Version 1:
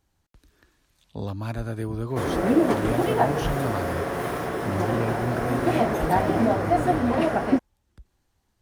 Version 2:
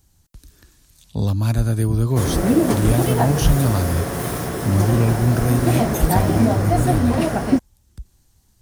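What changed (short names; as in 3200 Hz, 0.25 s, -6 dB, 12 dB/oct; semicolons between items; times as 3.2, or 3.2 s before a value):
speech +3.5 dB; master: add tone controls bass +10 dB, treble +14 dB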